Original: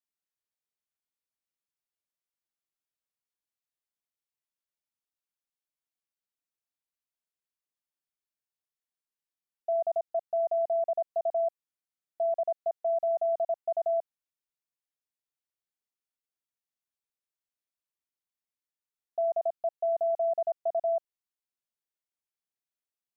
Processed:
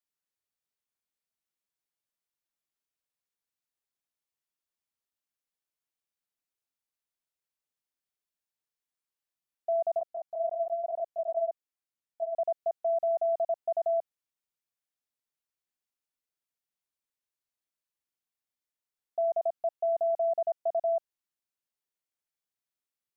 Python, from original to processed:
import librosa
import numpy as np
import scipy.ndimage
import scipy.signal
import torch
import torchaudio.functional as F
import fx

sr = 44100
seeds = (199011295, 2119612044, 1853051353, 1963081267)

y = fx.chorus_voices(x, sr, voices=2, hz=1.0, base_ms=22, depth_ms=3.4, mix_pct=60, at=(9.99, 12.35))